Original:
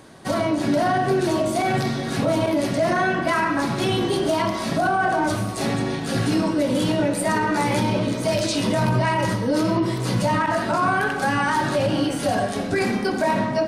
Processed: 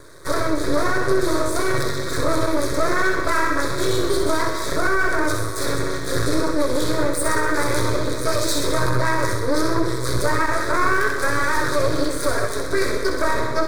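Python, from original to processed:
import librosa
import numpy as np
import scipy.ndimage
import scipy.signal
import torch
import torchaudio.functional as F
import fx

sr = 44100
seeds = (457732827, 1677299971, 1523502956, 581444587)

y = fx.peak_eq(x, sr, hz=3800.0, db=10.0, octaves=0.21)
y = np.maximum(y, 0.0)
y = fx.fixed_phaser(y, sr, hz=780.0, stages=6)
y = fx.echo_wet_highpass(y, sr, ms=64, feedback_pct=57, hz=2200.0, wet_db=-6.5)
y = F.gain(torch.from_numpy(y), 8.0).numpy()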